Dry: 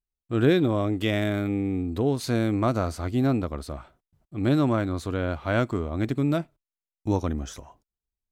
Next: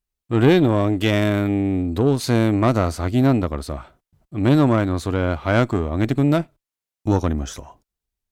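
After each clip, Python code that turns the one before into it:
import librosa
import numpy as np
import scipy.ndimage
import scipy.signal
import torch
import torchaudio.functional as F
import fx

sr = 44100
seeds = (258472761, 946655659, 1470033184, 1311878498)

y = fx.tube_stage(x, sr, drive_db=14.0, bias=0.5)
y = F.gain(torch.from_numpy(y), 8.5).numpy()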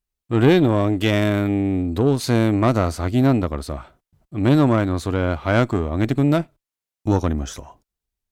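y = x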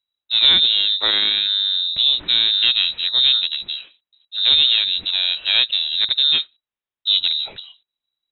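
y = fx.freq_invert(x, sr, carrier_hz=3900)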